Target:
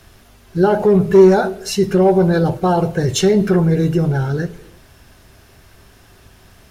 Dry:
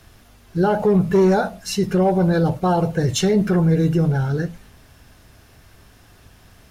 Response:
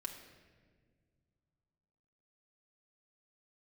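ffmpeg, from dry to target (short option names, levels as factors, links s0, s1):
-filter_complex "[0:a]asplit=2[s0][s1];[s1]equalizer=f=390:w=4.5:g=14[s2];[1:a]atrim=start_sample=2205,afade=t=out:st=0.38:d=0.01,atrim=end_sample=17199,lowshelf=f=210:g=-12[s3];[s2][s3]afir=irnorm=-1:irlink=0,volume=0.335[s4];[s0][s4]amix=inputs=2:normalize=0,volume=1.19"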